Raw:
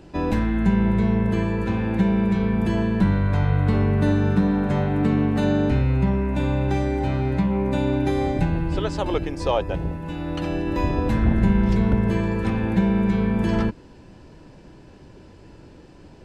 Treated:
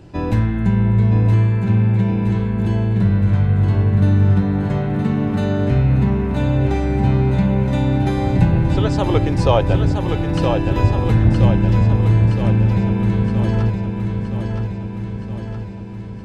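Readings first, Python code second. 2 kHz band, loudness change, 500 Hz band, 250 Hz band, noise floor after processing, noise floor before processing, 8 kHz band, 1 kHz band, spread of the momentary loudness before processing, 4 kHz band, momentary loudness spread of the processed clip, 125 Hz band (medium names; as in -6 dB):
+1.0 dB, +5.0 dB, +3.0 dB, +2.0 dB, -28 dBFS, -46 dBFS, no reading, +3.0 dB, 5 LU, +4.0 dB, 8 LU, +8.5 dB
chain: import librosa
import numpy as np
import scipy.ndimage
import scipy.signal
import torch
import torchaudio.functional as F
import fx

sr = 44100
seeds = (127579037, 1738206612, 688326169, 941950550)

p1 = fx.peak_eq(x, sr, hz=110.0, db=14.5, octaves=0.47)
p2 = fx.rider(p1, sr, range_db=10, speed_s=2.0)
p3 = p2 + fx.echo_feedback(p2, sr, ms=969, feedback_pct=60, wet_db=-5.5, dry=0)
y = F.gain(torch.from_numpy(p3), -1.5).numpy()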